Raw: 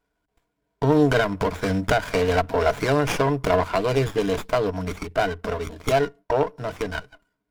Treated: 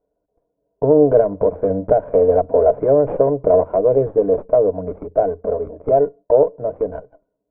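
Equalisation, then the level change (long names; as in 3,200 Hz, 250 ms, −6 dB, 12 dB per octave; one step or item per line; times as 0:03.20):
low-pass with resonance 550 Hz, resonance Q 4.9
high-frequency loss of the air 460 metres
low-shelf EQ 290 Hz −6.5 dB
+3.0 dB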